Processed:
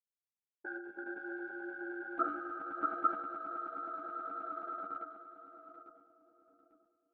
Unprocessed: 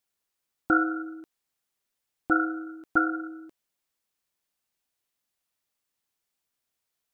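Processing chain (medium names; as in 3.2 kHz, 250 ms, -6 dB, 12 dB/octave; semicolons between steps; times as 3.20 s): Doppler pass-by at 1.74 s, 28 m/s, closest 3 m; expander -56 dBFS; bass shelf 170 Hz -10.5 dB; hum notches 50/100/150/200/250/300 Hz; echo with a slow build-up 106 ms, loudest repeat 8, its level -3.5 dB; level-controlled noise filter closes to 330 Hz, open at -37.5 dBFS; tone controls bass -9 dB, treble -14 dB; level held to a coarse grid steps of 12 dB; transient shaper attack +5 dB, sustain +9 dB; three-phase chorus; trim +7 dB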